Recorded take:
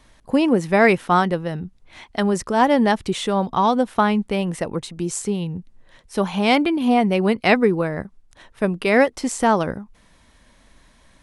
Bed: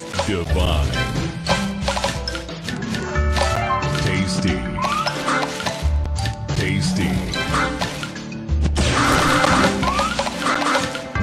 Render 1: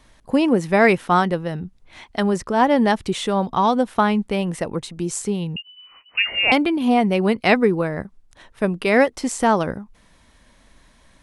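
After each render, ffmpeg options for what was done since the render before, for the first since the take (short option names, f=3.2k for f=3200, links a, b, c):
-filter_complex "[0:a]asettb=1/sr,asplit=3[a][b][c];[a]atrim=end=2.364[d];[b]atrim=start=2.36:end=2.76,asetpts=PTS-STARTPTS,afade=t=in:d=0.004:c=qsin,afade=t=out:st=0.396:d=0.004:c=qsin,highshelf=f=5.4k:g=-7[e];[c]atrim=start=2.756[f];[d][e]acrossfade=d=0.004:c1=hsin:c2=qsin[g];[g][f]acrossfade=d=0.004:c1=qsin:c2=hsin,asettb=1/sr,asplit=3[h][i][j];[h]atrim=end=5.564[k];[i]atrim=start=5.56:end=6.52,asetpts=PTS-STARTPTS,afade=t=in:d=0.004:c=qsin,afade=t=out:st=0.956:d=0.004:c=qsin,lowpass=f=2.6k:t=q:w=0.5098,lowpass=f=2.6k:t=q:w=0.6013,lowpass=f=2.6k:t=q:w=0.9,lowpass=f=2.6k:t=q:w=2.563,afreqshift=-3000[l];[j]atrim=start=6.516[m];[k][l]acrossfade=d=0.004:c1=hsin:c2=qsin[n];[n][m]acrossfade=d=0.004:c1=qsin:c2=hsin"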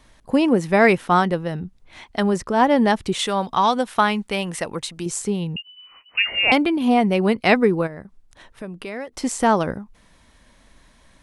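-filter_complex "[0:a]asettb=1/sr,asplit=3[a][b][c];[a]atrim=end=3.194[d];[b]atrim=start=3.19:end=5.06,asetpts=PTS-STARTPTS,afade=t=in:d=0.004:c=qsin,afade=t=out:st=1.866:d=0.004:c=qsin,tiltshelf=f=820:g=-5.5[e];[c]atrim=start=5.056[f];[d][e]acrossfade=d=0.004:c1=hsin:c2=qsin[g];[g][f]acrossfade=d=0.004:c1=qsin:c2=hsin,asplit=3[h][i][j];[h]afade=t=out:st=7.86:d=0.02[k];[i]acompressor=threshold=-35dB:ratio=2.5:attack=3.2:release=140:knee=1:detection=peak,afade=t=in:st=7.86:d=0.02,afade=t=out:st=9.12:d=0.02[l];[j]afade=t=in:st=9.12:d=0.02[m];[k][l][m]amix=inputs=3:normalize=0"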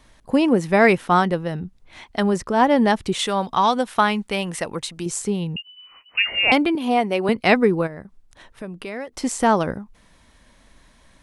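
-filter_complex "[0:a]asettb=1/sr,asplit=3[a][b][c];[a]atrim=end=6.754[d];[b]atrim=start=6.75:end=7.29,asetpts=PTS-STARTPTS,afade=t=in:d=0.004:c=qsin,afade=t=out:st=0.536:d=0.004:c=qsin,highpass=310[e];[c]atrim=start=7.286[f];[d][e]acrossfade=d=0.004:c1=hsin:c2=qsin[g];[g][f]acrossfade=d=0.004:c1=qsin:c2=hsin"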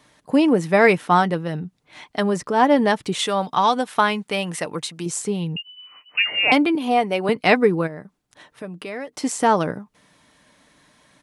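-af "highpass=130,aecho=1:1:6.7:0.32"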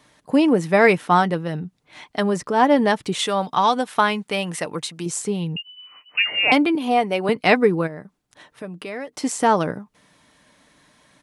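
-af anull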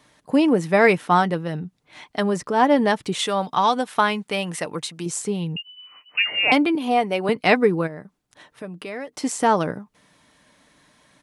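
-af "volume=-1dB"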